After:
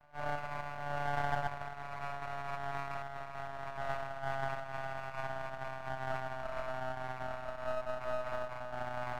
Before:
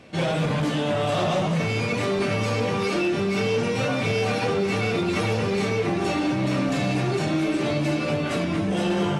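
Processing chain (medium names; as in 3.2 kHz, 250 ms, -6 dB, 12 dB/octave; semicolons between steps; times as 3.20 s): vocoder on a note that slides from D3, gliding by -3 st; brick-wall FIR band-pass 590–1500 Hz; half-wave rectifier; trim +4.5 dB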